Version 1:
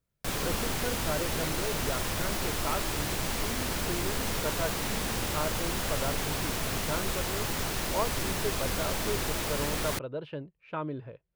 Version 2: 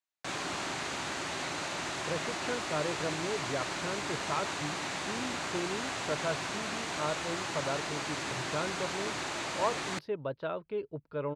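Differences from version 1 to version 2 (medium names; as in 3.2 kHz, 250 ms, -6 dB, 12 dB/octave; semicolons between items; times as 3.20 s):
speech: entry +1.65 s; background: add cabinet simulation 210–7100 Hz, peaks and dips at 220 Hz -9 dB, 470 Hz -9 dB, 3.2 kHz -3 dB, 5.3 kHz -6 dB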